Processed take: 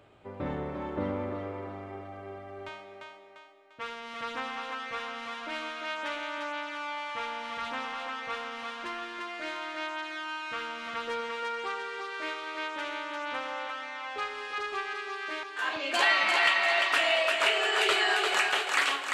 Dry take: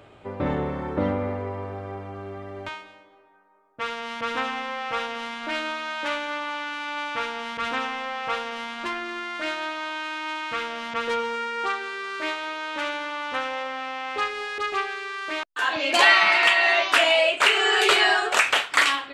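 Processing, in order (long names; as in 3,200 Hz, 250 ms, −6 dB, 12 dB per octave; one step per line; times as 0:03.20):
feedback echo with a high-pass in the loop 347 ms, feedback 49%, high-pass 280 Hz, level −3.5 dB
on a send at −17.5 dB: convolution reverb RT60 1.0 s, pre-delay 102 ms
on the sum: level −8.5 dB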